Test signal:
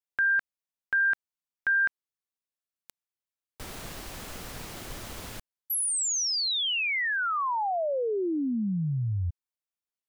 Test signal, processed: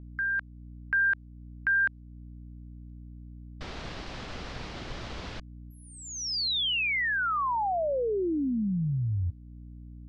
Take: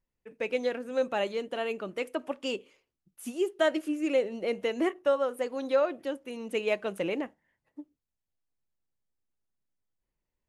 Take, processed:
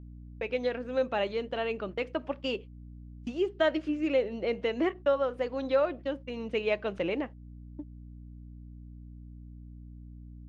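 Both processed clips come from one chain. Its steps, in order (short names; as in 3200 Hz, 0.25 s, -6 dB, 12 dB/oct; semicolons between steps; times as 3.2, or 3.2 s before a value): AGC gain up to 6 dB; gate -35 dBFS, range -43 dB; hum 60 Hz, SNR 18 dB; in parallel at -0.5 dB: compressor, threshold -36 dBFS; on the sum: LPF 5000 Hz 24 dB/oct; gain -7.5 dB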